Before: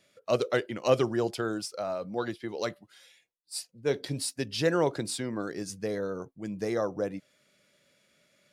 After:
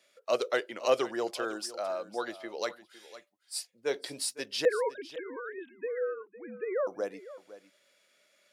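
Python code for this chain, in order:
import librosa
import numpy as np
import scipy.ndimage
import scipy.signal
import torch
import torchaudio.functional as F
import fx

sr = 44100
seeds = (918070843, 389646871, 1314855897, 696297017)

y = fx.sine_speech(x, sr, at=(4.65, 6.87))
y = scipy.signal.sosfilt(scipy.signal.butter(2, 450.0, 'highpass', fs=sr, output='sos'), y)
y = y + 10.0 ** (-16.0 / 20.0) * np.pad(y, (int(507 * sr / 1000.0), 0))[:len(y)]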